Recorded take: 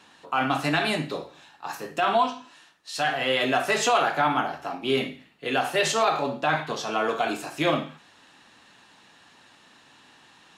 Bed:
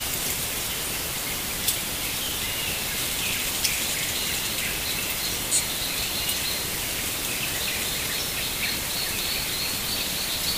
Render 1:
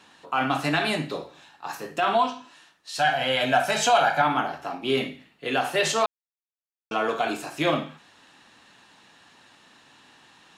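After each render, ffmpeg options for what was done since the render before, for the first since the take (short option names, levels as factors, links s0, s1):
-filter_complex "[0:a]asettb=1/sr,asplit=3[s0][s1][s2];[s0]atrim=end=2.994[s3];[s1]atrim=start=2.99:end=4.22,asetpts=PTS-STARTPTS,afade=t=in:d=0.004:c=qsin,afade=t=out:st=1.226:d=0.004:c=qsin,aecho=1:1:1.3:0.65,atrim=end_sample=54243[s4];[s2]atrim=start=4.216[s5];[s3][s4]acrossfade=d=0.004:c1=hsin:c2=qsin[s6];[s6][s5]acrossfade=d=0.004:c1=qsin:c2=hsin,asplit=3[s7][s8][s9];[s7]atrim=end=6.06,asetpts=PTS-STARTPTS,afade=t=out:st=6.056:d=0.004:c=hsin[s10];[s8]atrim=start=6.06:end=6.91,asetpts=PTS-STARTPTS,volume=0[s11];[s9]atrim=start=6.91,asetpts=PTS-STARTPTS,afade=t=in:d=0.004:c=hsin[s12];[s10][s11][s12]concat=n=3:v=0:a=1"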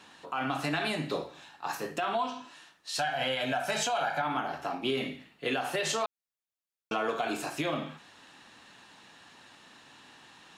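-af "acompressor=threshold=0.0562:ratio=4,alimiter=limit=0.1:level=0:latency=1:release=212"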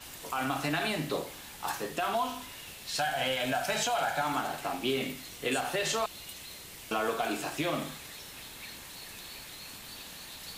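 -filter_complex "[1:a]volume=0.119[s0];[0:a][s0]amix=inputs=2:normalize=0"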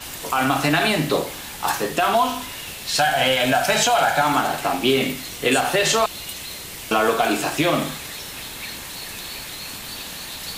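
-af "volume=3.98"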